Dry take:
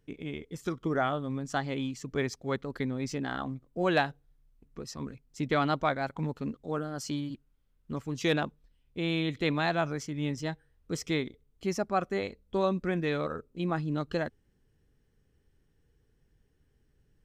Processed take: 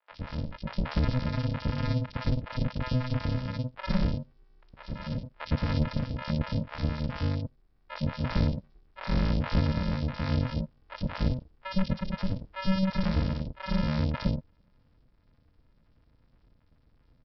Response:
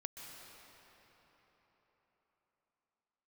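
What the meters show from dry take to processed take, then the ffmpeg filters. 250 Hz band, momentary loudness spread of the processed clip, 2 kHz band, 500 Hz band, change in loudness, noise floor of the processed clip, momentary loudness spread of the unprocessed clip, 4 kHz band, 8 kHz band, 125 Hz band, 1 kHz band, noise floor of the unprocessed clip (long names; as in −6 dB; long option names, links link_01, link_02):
+1.5 dB, 9 LU, −4.5 dB, −6.5 dB, +1.0 dB, −65 dBFS, 11 LU, −1.0 dB, below −15 dB, +7.5 dB, −5.0 dB, −70 dBFS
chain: -filter_complex "[0:a]acrossover=split=370|3000[link_01][link_02][link_03];[link_02]acompressor=threshold=-36dB:ratio=6[link_04];[link_01][link_04][link_03]amix=inputs=3:normalize=0,aresample=11025,acrusher=samples=29:mix=1:aa=0.000001,aresample=44100,acrossover=split=680|3000[link_05][link_06][link_07];[link_07]adelay=60[link_08];[link_05]adelay=110[link_09];[link_09][link_06][link_08]amix=inputs=3:normalize=0,volume=5.5dB"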